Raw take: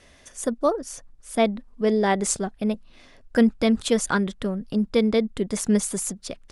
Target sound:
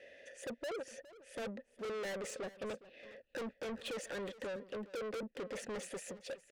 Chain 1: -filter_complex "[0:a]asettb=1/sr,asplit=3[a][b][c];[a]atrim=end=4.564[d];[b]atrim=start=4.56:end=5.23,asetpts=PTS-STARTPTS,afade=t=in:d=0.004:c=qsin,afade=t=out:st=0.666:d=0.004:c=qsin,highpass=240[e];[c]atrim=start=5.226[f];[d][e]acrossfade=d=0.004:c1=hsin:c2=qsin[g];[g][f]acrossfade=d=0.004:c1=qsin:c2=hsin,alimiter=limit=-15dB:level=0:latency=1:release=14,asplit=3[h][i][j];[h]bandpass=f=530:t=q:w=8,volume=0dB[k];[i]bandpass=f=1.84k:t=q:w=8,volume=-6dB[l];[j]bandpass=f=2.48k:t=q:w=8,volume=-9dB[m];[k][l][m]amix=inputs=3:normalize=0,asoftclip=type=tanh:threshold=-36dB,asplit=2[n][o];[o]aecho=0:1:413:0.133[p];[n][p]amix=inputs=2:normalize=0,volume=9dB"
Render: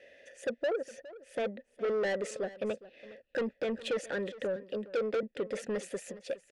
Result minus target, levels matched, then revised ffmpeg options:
soft clip: distortion -5 dB
-filter_complex "[0:a]asettb=1/sr,asplit=3[a][b][c];[a]atrim=end=4.564[d];[b]atrim=start=4.56:end=5.23,asetpts=PTS-STARTPTS,afade=t=in:d=0.004:c=qsin,afade=t=out:st=0.666:d=0.004:c=qsin,highpass=240[e];[c]atrim=start=5.226[f];[d][e]acrossfade=d=0.004:c1=hsin:c2=qsin[g];[g][f]acrossfade=d=0.004:c1=qsin:c2=hsin,alimiter=limit=-15dB:level=0:latency=1:release=14,asplit=3[h][i][j];[h]bandpass=f=530:t=q:w=8,volume=0dB[k];[i]bandpass=f=1.84k:t=q:w=8,volume=-6dB[l];[j]bandpass=f=2.48k:t=q:w=8,volume=-9dB[m];[k][l][m]amix=inputs=3:normalize=0,asoftclip=type=tanh:threshold=-48dB,asplit=2[n][o];[o]aecho=0:1:413:0.133[p];[n][p]amix=inputs=2:normalize=0,volume=9dB"

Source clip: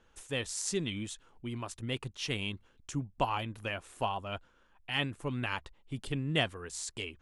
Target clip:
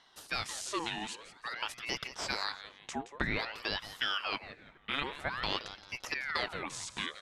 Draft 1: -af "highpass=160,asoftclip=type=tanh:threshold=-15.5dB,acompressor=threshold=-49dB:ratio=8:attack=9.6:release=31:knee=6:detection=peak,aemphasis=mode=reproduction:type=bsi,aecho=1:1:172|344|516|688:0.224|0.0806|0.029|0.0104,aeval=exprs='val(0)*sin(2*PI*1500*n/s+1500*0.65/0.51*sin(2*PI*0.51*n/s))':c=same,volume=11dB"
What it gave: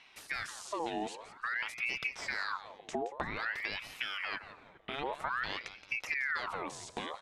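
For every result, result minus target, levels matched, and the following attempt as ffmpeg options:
compressor: peak gain reduction +7.5 dB; 125 Hz band -5.5 dB
-af "highpass=160,asoftclip=type=tanh:threshold=-15.5dB,acompressor=threshold=-41dB:ratio=8:attack=9.6:release=31:knee=6:detection=peak,aemphasis=mode=reproduction:type=bsi,aecho=1:1:172|344|516|688:0.224|0.0806|0.029|0.0104,aeval=exprs='val(0)*sin(2*PI*1500*n/s+1500*0.65/0.51*sin(2*PI*0.51*n/s))':c=same,volume=11dB"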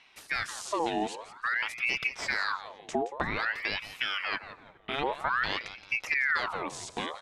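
125 Hz band -5.5 dB
-af "highpass=580,asoftclip=type=tanh:threshold=-15.5dB,acompressor=threshold=-41dB:ratio=8:attack=9.6:release=31:knee=6:detection=peak,aemphasis=mode=reproduction:type=bsi,aecho=1:1:172|344|516|688:0.224|0.0806|0.029|0.0104,aeval=exprs='val(0)*sin(2*PI*1500*n/s+1500*0.65/0.51*sin(2*PI*0.51*n/s))':c=same,volume=11dB"

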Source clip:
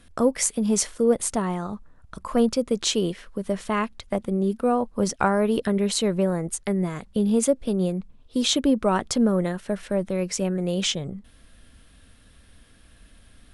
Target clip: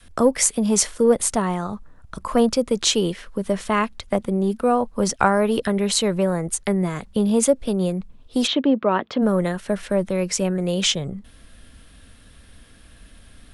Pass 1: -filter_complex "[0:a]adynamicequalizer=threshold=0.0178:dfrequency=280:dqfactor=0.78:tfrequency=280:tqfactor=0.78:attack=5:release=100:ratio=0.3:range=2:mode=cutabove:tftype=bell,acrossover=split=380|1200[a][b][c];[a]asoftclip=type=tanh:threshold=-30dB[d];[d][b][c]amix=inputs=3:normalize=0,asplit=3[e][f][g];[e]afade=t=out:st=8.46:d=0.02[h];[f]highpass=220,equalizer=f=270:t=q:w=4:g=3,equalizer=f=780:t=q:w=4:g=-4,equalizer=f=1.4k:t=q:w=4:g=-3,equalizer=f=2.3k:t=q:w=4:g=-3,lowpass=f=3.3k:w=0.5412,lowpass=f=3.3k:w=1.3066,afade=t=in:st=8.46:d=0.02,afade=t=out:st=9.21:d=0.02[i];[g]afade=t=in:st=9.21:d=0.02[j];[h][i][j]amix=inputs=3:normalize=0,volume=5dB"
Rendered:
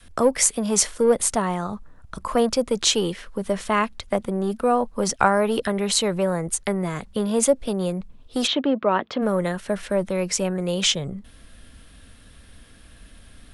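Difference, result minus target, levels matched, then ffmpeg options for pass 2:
soft clip: distortion +9 dB
-filter_complex "[0:a]adynamicequalizer=threshold=0.0178:dfrequency=280:dqfactor=0.78:tfrequency=280:tqfactor=0.78:attack=5:release=100:ratio=0.3:range=2:mode=cutabove:tftype=bell,acrossover=split=380|1200[a][b][c];[a]asoftclip=type=tanh:threshold=-21dB[d];[d][b][c]amix=inputs=3:normalize=0,asplit=3[e][f][g];[e]afade=t=out:st=8.46:d=0.02[h];[f]highpass=220,equalizer=f=270:t=q:w=4:g=3,equalizer=f=780:t=q:w=4:g=-4,equalizer=f=1.4k:t=q:w=4:g=-3,equalizer=f=2.3k:t=q:w=4:g=-3,lowpass=f=3.3k:w=0.5412,lowpass=f=3.3k:w=1.3066,afade=t=in:st=8.46:d=0.02,afade=t=out:st=9.21:d=0.02[i];[g]afade=t=in:st=9.21:d=0.02[j];[h][i][j]amix=inputs=3:normalize=0,volume=5dB"

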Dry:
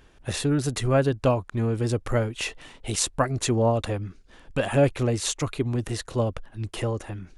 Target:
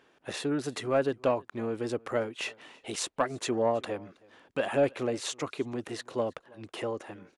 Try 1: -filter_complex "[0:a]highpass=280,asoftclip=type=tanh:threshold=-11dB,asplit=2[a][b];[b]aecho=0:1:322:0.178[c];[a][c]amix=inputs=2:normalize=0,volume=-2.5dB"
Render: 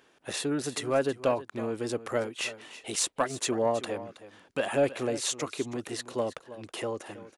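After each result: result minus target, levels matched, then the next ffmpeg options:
echo-to-direct +10.5 dB; 8000 Hz band +6.0 dB
-filter_complex "[0:a]highpass=280,asoftclip=type=tanh:threshold=-11dB,asplit=2[a][b];[b]aecho=0:1:322:0.0531[c];[a][c]amix=inputs=2:normalize=0,volume=-2.5dB"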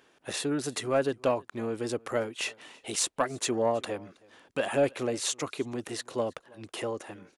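8000 Hz band +6.0 dB
-filter_complex "[0:a]highpass=280,highshelf=f=5.7k:g=-11,asoftclip=type=tanh:threshold=-11dB,asplit=2[a][b];[b]aecho=0:1:322:0.0531[c];[a][c]amix=inputs=2:normalize=0,volume=-2.5dB"

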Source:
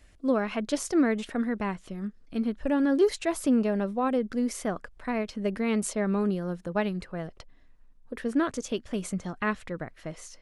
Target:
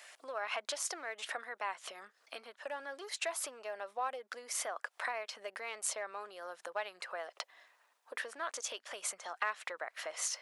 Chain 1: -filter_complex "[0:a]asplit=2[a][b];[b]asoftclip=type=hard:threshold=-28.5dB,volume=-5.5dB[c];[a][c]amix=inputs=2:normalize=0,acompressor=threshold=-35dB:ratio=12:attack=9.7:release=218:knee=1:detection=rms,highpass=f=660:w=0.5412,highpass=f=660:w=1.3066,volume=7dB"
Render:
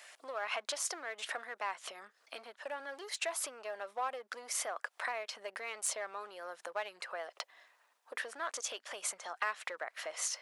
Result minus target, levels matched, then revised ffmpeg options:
hard clip: distortion +10 dB
-filter_complex "[0:a]asplit=2[a][b];[b]asoftclip=type=hard:threshold=-20dB,volume=-5.5dB[c];[a][c]amix=inputs=2:normalize=0,acompressor=threshold=-35dB:ratio=12:attack=9.7:release=218:knee=1:detection=rms,highpass=f=660:w=0.5412,highpass=f=660:w=1.3066,volume=7dB"

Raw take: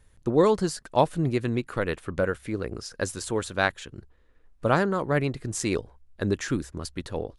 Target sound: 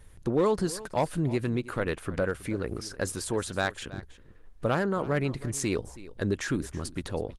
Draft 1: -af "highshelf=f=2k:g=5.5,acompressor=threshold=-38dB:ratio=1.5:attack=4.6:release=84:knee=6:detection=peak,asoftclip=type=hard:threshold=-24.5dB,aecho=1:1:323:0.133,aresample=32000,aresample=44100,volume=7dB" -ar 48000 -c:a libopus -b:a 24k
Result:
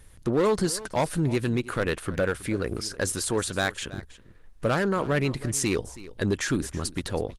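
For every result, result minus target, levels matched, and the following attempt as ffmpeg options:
4000 Hz band +3.0 dB; compressor: peak gain reduction -3 dB
-af "acompressor=threshold=-38dB:ratio=1.5:attack=4.6:release=84:knee=6:detection=peak,asoftclip=type=hard:threshold=-24.5dB,aecho=1:1:323:0.133,aresample=32000,aresample=44100,volume=7dB" -ar 48000 -c:a libopus -b:a 24k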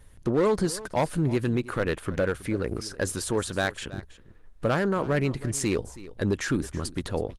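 compressor: peak gain reduction -3 dB
-af "acompressor=threshold=-47.5dB:ratio=1.5:attack=4.6:release=84:knee=6:detection=peak,asoftclip=type=hard:threshold=-24.5dB,aecho=1:1:323:0.133,aresample=32000,aresample=44100,volume=7dB" -ar 48000 -c:a libopus -b:a 24k

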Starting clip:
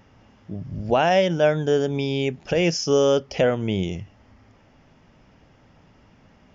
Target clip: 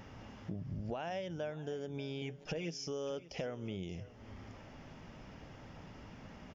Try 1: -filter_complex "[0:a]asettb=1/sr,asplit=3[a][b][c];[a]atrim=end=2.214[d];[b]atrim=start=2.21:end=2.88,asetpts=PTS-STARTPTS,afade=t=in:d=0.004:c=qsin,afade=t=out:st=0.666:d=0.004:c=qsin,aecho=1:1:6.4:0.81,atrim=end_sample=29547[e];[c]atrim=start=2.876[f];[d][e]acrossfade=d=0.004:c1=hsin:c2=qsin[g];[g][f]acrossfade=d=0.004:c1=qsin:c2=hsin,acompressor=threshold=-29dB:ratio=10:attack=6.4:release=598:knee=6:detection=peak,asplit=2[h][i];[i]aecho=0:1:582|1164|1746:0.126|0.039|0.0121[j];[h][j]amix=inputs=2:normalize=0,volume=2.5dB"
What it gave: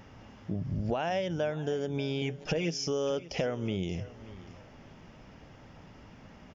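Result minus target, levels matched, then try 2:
compressor: peak gain reduction -9 dB
-filter_complex "[0:a]asettb=1/sr,asplit=3[a][b][c];[a]atrim=end=2.214[d];[b]atrim=start=2.21:end=2.88,asetpts=PTS-STARTPTS,afade=t=in:d=0.004:c=qsin,afade=t=out:st=0.666:d=0.004:c=qsin,aecho=1:1:6.4:0.81,atrim=end_sample=29547[e];[c]atrim=start=2.876[f];[d][e]acrossfade=d=0.004:c1=hsin:c2=qsin[g];[g][f]acrossfade=d=0.004:c1=qsin:c2=hsin,acompressor=threshold=-39dB:ratio=10:attack=6.4:release=598:knee=6:detection=peak,asplit=2[h][i];[i]aecho=0:1:582|1164|1746:0.126|0.039|0.0121[j];[h][j]amix=inputs=2:normalize=0,volume=2.5dB"

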